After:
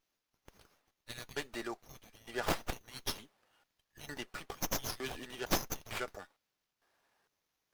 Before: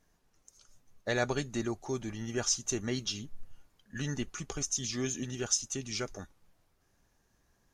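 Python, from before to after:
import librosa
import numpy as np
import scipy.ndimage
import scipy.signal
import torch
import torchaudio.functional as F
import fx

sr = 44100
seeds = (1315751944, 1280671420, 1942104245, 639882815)

y = fx.tracing_dist(x, sr, depth_ms=0.22)
y = fx.filter_lfo_highpass(y, sr, shape='square', hz=1.1, low_hz=570.0, high_hz=5900.0, q=0.75)
y = fx.running_max(y, sr, window=5)
y = F.gain(torch.from_numpy(y), 1.5).numpy()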